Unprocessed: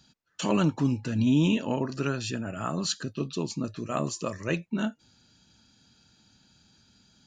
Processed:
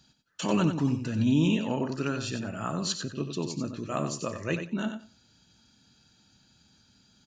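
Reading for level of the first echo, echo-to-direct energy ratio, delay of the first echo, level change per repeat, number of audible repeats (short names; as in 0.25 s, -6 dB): -8.0 dB, -8.0 dB, 92 ms, -15.5 dB, 2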